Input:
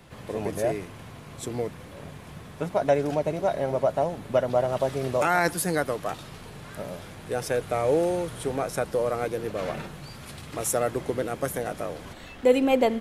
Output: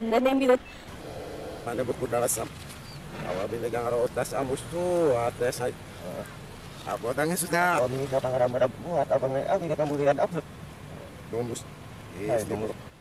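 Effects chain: whole clip reversed; spectral freeze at 1.04, 0.61 s; core saturation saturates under 680 Hz

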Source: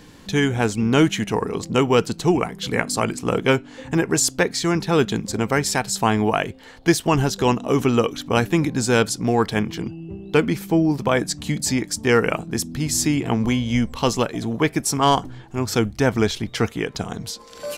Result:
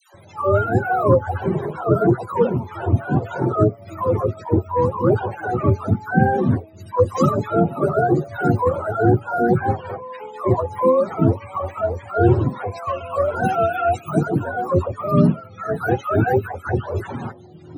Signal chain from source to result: spectrum mirrored in octaves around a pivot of 410 Hz; dispersion lows, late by 0.144 s, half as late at 960 Hz; gain +3 dB

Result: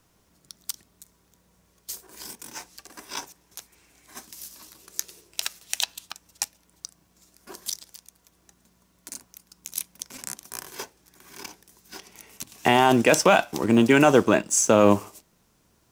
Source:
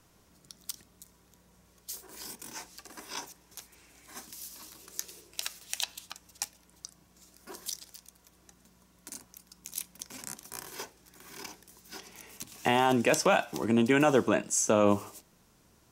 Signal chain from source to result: G.711 law mismatch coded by A; gain +7.5 dB

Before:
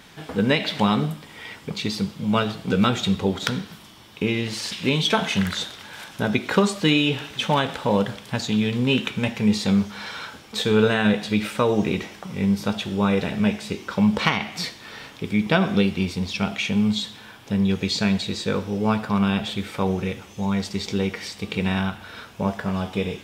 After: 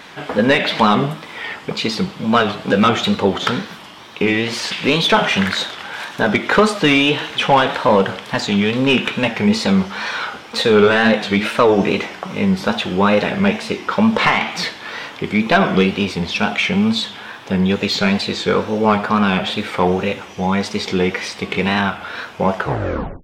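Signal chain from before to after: tape stop at the end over 0.75 s; overdrive pedal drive 18 dB, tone 1700 Hz, clips at -2 dBFS; wow and flutter 110 cents; gain +2.5 dB

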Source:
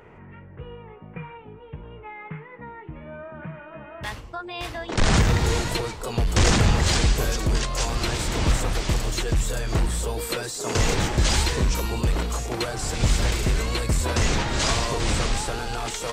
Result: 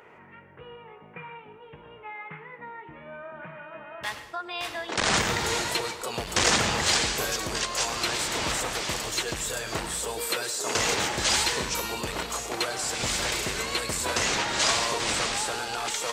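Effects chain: HPF 700 Hz 6 dB/oct; on a send: reverb, pre-delay 97 ms, DRR 12 dB; on the sum: gain +1.5 dB

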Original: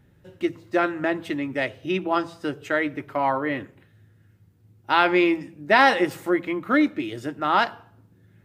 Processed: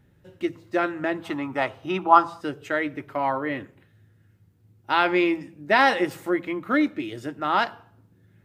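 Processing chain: 1.24–2.41 band shelf 1000 Hz +13 dB 1.1 oct; gain -2 dB

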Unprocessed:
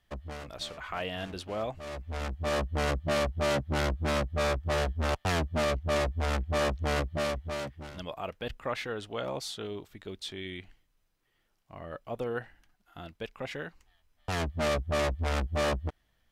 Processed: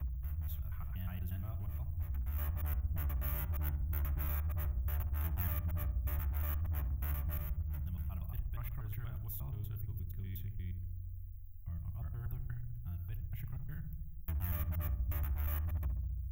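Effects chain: slices in reverse order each 0.119 s, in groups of 2; inverse Chebyshev band-stop 210–9400 Hz, stop band 50 dB; high shelf 7700 Hz -3.5 dB; darkening echo 67 ms, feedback 72%, low-pass 890 Hz, level -7.5 dB; spectral compressor 4:1; gain +3 dB

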